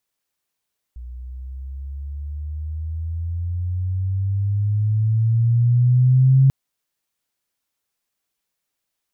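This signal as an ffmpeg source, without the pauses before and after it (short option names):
-f lavfi -i "aevalsrc='pow(10,(-9.5+22*(t/5.54-1))/20)*sin(2*PI*60.2*5.54/(14*log(2)/12)*(exp(14*log(2)/12*t/5.54)-1))':d=5.54:s=44100"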